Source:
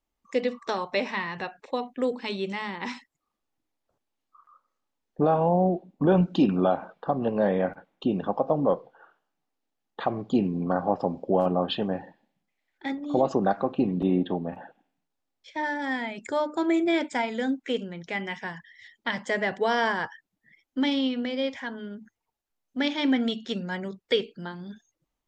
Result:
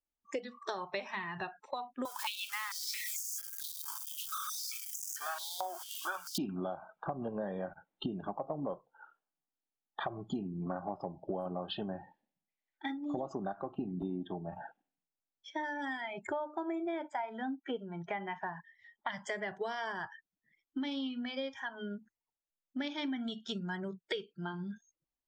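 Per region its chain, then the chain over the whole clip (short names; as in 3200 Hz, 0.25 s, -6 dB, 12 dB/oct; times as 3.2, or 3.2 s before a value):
2.05–6.38 switching spikes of -25 dBFS + stepped high-pass 4.5 Hz 980–6500 Hz
16.13–19.09 LPF 2200 Hz 6 dB/oct + bell 840 Hz +9 dB 1.2 oct
whole clip: spectral noise reduction 16 dB; compressor 6:1, threshold -37 dBFS; gain +1.5 dB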